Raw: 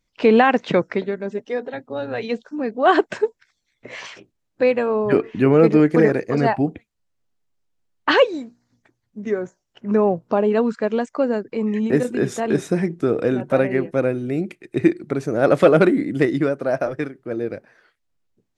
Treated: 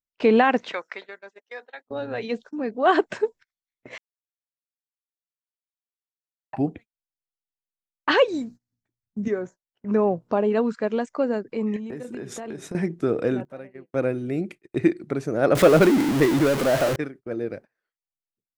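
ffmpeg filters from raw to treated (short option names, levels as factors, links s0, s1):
-filter_complex "[0:a]asettb=1/sr,asplit=3[s0][s1][s2];[s0]atrim=end=0.694[s3];[s1]atrim=start=0.69:end=1.86,asetpts=PTS-STARTPTS,afade=t=in:d=0.004:c=qsin,afade=t=out:st=1.166:d=0.004:c=qsin,highpass=980[s4];[s2]atrim=start=1.856[s5];[s3][s4]acrossfade=d=0.004:c1=hsin:c2=qsin[s6];[s6][s5]acrossfade=d=0.004:c1=qsin:c2=hsin,asettb=1/sr,asplit=3[s7][s8][s9];[s7]atrim=end=8.284[s10];[s8]atrim=start=8.28:end=9.28,asetpts=PTS-STARTPTS,afade=t=in:d=0.004:c=qsin,afade=t=out:st=0.996:d=0.004:c=qsin,bass=f=250:g=12,treble=f=4000:g=8[s11];[s9]atrim=start=9.276[s12];[s10][s11]acrossfade=d=0.004:c1=hsin:c2=qsin[s13];[s13][s12]acrossfade=d=0.004:c1=qsin:c2=hsin,asettb=1/sr,asplit=3[s14][s15][s16];[s14]atrim=end=11.764[s17];[s15]atrim=start=11.76:end=12.75,asetpts=PTS-STARTPTS,afade=t=in:d=0.004:c=qsin,afade=t=out:st=0.986:d=0.004:c=qsin,acompressor=threshold=0.0501:ratio=20:attack=3.2:release=140:knee=1:detection=peak[s18];[s16]atrim=start=12.746[s19];[s17][s18]acrossfade=d=0.004:c1=hsin:c2=qsin[s20];[s20][s19]acrossfade=d=0.004:c1=qsin:c2=hsin,asettb=1/sr,asplit=3[s21][s22][s23];[s21]atrim=end=15.554[s24];[s22]atrim=start=15.55:end=16.96,asetpts=PTS-STARTPTS,afade=t=in:d=0.004:c=qsin,afade=t=out:st=1.406:d=0.004:c=qsin,aeval=exprs='val(0)+0.5*0.141*sgn(val(0))':c=same[s25];[s23]atrim=start=16.956[s26];[s24][s25]acrossfade=d=0.004:c1=hsin:c2=qsin[s27];[s27][s26]acrossfade=d=0.004:c1=qsin:c2=hsin,asplit=5[s28][s29][s30][s31][s32];[s28]atrim=end=3.98,asetpts=PTS-STARTPTS,afade=t=out:st=3.976:d=0.004:c=hsin[s33];[s29]atrim=start=3.98:end=6.53,asetpts=PTS-STARTPTS,volume=0[s34];[s30]atrim=start=6.53:end=13.45,asetpts=PTS-STARTPTS,afade=t=in:d=0.004:c=hsin,afade=t=out:st=6.74:d=0.18:c=log:silence=0.125893[s35];[s31]atrim=start=13.45:end=13.93,asetpts=PTS-STARTPTS,volume=0.126[s36];[s32]atrim=start=13.93,asetpts=PTS-STARTPTS,afade=t=in:d=0.18:c=log:silence=0.125893[s37];[s33][s34][s35][s36][s37]concat=n=5:v=0:a=1,agate=range=0.0631:threshold=0.0126:ratio=16:detection=peak,volume=0.668"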